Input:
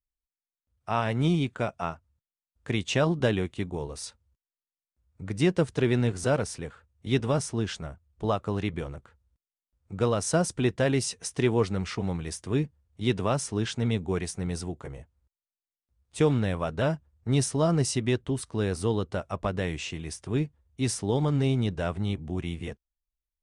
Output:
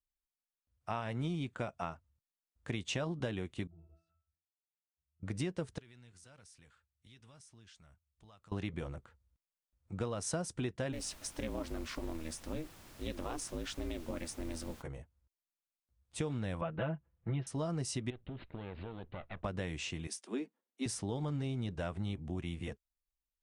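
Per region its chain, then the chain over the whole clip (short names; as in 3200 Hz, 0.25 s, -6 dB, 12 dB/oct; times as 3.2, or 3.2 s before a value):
3.67–5.23 compressor 4:1, threshold -40 dBFS + octave resonator E, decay 0.41 s
5.78–8.52 passive tone stack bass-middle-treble 5-5-5 + compressor 5:1, threshold -52 dBFS
10.92–14.81 ring modulator 160 Hz + compressor 2.5:1, threshold -29 dBFS + added noise pink -51 dBFS
16.61–17.47 steep low-pass 3100 Hz + comb 6 ms, depth 85%
18.1–19.44 minimum comb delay 0.42 ms + Chebyshev low-pass 3800 Hz, order 6 + compressor 12:1, threshold -34 dBFS
20.07–20.86 steep high-pass 200 Hz 72 dB/oct + three-band expander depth 40%
whole clip: notch 420 Hz, Q 12; compressor, threshold -29 dBFS; gain -4.5 dB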